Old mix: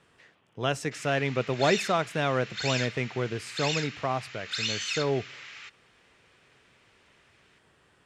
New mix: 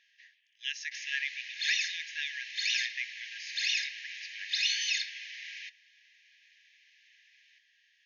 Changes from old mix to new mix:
background: send +10.5 dB; master: add brick-wall FIR band-pass 1.6–6.8 kHz

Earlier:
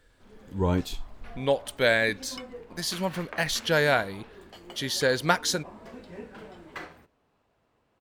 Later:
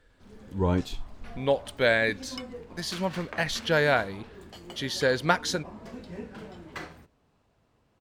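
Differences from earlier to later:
background: add tone controls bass +7 dB, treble +11 dB; master: add treble shelf 6.7 kHz -10.5 dB

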